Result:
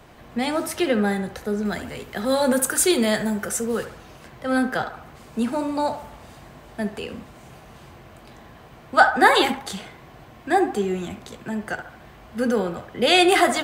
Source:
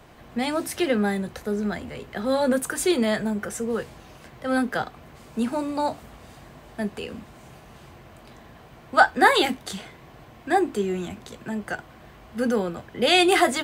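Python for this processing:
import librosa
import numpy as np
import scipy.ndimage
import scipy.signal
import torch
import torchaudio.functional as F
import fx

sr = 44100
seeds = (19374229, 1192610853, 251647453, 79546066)

y = fx.high_shelf(x, sr, hz=4900.0, db=9.5, at=(1.65, 3.85))
y = fx.echo_banded(y, sr, ms=70, feedback_pct=52, hz=990.0, wet_db=-8.5)
y = y * librosa.db_to_amplitude(1.5)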